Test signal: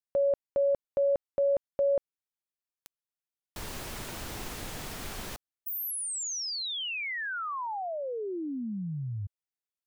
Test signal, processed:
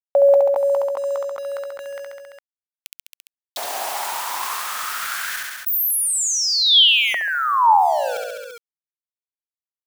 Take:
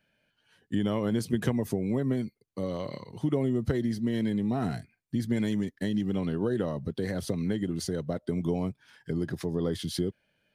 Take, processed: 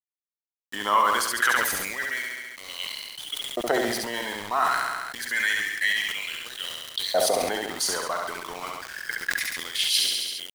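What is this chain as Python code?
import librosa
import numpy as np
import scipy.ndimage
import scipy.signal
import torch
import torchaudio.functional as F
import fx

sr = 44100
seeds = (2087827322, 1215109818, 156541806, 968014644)

y = fx.high_shelf(x, sr, hz=7100.0, db=5.5)
y = fx.filter_lfo_highpass(y, sr, shape='saw_up', hz=0.28, low_hz=670.0, high_hz=3800.0, q=4.8)
y = np.where(np.abs(y) >= 10.0 ** (-45.0 / 20.0), y, 0.0)
y = fx.echo_feedback(y, sr, ms=68, feedback_pct=51, wet_db=-6.5)
y = fx.sustainer(y, sr, db_per_s=32.0)
y = y * librosa.db_to_amplitude(8.5)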